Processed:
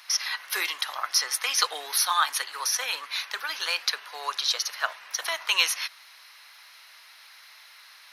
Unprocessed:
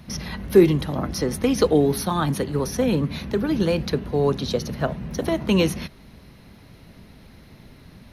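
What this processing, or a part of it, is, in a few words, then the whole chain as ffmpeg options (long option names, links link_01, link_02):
headphones lying on a table: -af "highpass=frequency=1100:width=0.5412,highpass=frequency=1100:width=1.3066,equalizer=frequency=5200:width_type=o:width=0.56:gain=4,volume=6dB"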